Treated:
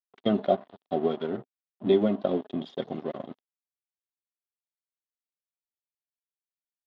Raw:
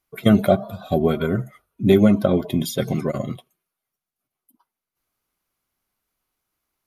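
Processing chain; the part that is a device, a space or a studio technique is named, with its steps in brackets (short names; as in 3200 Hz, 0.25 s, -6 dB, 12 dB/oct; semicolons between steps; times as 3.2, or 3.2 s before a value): blown loudspeaker (crossover distortion -31 dBFS; speaker cabinet 230–3700 Hz, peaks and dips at 260 Hz +4 dB, 400 Hz +4 dB, 720 Hz +5 dB, 1500 Hz -5 dB, 2300 Hz -8 dB, 3400 Hz +5 dB); gain -8 dB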